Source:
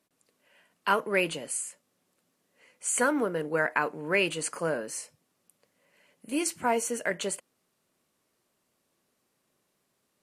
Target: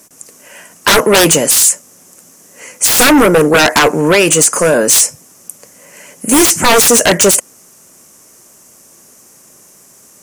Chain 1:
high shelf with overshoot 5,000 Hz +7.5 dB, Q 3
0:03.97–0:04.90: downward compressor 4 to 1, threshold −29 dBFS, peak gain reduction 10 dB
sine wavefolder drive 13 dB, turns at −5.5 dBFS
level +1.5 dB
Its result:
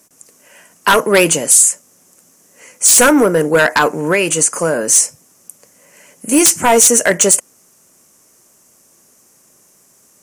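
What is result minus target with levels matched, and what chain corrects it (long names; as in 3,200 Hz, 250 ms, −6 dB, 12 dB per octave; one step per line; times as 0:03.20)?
sine wavefolder: distortion −10 dB
high shelf with overshoot 5,000 Hz +7.5 dB, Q 3
0:03.97–0:04.90: downward compressor 4 to 1, threshold −29 dBFS, peak gain reduction 10 dB
sine wavefolder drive 21 dB, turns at −5.5 dBFS
level +1.5 dB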